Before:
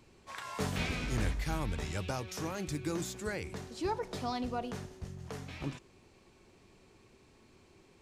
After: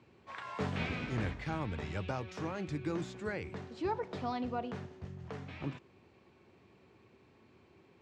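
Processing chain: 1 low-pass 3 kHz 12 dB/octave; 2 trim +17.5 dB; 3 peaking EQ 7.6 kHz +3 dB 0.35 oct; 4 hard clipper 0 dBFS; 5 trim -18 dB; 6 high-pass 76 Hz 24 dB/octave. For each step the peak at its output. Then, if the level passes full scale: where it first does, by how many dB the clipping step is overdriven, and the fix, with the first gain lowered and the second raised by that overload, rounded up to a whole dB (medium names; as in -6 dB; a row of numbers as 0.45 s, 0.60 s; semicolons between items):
-20.5 dBFS, -3.0 dBFS, -3.0 dBFS, -3.0 dBFS, -21.0 dBFS, -22.5 dBFS; nothing clips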